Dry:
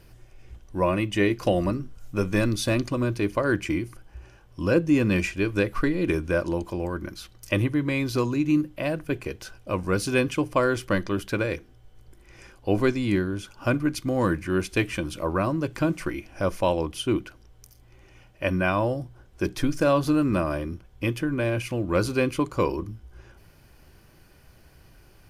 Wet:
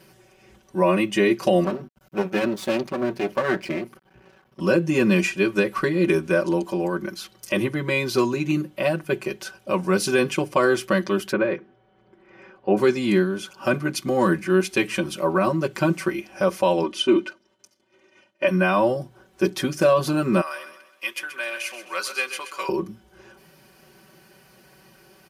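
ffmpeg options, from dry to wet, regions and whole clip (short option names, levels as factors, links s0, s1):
-filter_complex "[0:a]asettb=1/sr,asplit=3[s0][s1][s2];[s0]atrim=end=1.644[s3];[s1]atrim=start=1.64:end=4.6,asetpts=PTS-STARTPTS,afade=t=in:d=0.004:c=qsin,afade=t=out:st=2.956:d=0.004:c=qsin,equalizer=f=8000:w=0.81:g=-12.5,aeval=exprs='max(val(0),0)':c=same[s4];[s2]atrim=start=4.596[s5];[s3][s4]acrossfade=d=0.004:c1=hsin:c2=qsin[s6];[s6][s5]acrossfade=d=0.004:c1=qsin:c2=hsin,asettb=1/sr,asplit=3[s7][s8][s9];[s7]atrim=end=11.324[s10];[s8]atrim=start=11.32:end=12.77,asetpts=PTS-STARTPTS,afade=t=in:d=0.004:c=qsin,afade=t=out:st=1.446:d=0.004:c=qsin,lowpass=1900,equalizer=f=65:t=o:w=0.92:g=-9.5[s11];[s9]atrim=start=12.766[s12];[s10][s11]acrossfade=d=0.004:c1=hsin:c2=qsin[s13];[s13][s12]acrossfade=d=0.004:c1=qsin:c2=hsin,asettb=1/sr,asplit=3[s14][s15][s16];[s14]atrim=end=16.834[s17];[s15]atrim=start=16.83:end=18.47,asetpts=PTS-STARTPTS,afade=t=in:d=0.004:c=qsin,afade=t=out:st=1.636:d=0.004:c=qsin,agate=range=0.0224:threshold=0.00501:ratio=3:release=100:detection=peak,highpass=140,lowpass=6500,aecho=1:1:3.3:0.71,atrim=end_sample=72324[s18];[s16]atrim=start=18.466[s19];[s17][s18]acrossfade=d=0.004:c1=hsin:c2=qsin[s20];[s20][s19]acrossfade=d=0.004:c1=qsin:c2=hsin,asettb=1/sr,asplit=3[s21][s22][s23];[s21]atrim=end=20.414[s24];[s22]atrim=start=20.41:end=22.69,asetpts=PTS-STARTPTS,afade=t=in:d=0.004:c=qsin,afade=t=out:st=2.276:d=0.004:c=qsin,highpass=1300,aecho=1:1:130|260|390|520:0.282|0.118|0.0497|0.0209,atrim=end_sample=100548[s25];[s23]atrim=start=22.686[s26];[s24][s25]acrossfade=d=0.004:c1=hsin:c2=qsin[s27];[s27][s26]acrossfade=d=0.004:c1=qsin:c2=hsin,highpass=170,aecho=1:1:5.3:0.95,alimiter=level_in=3.16:limit=0.891:release=50:level=0:latency=1,volume=0.422"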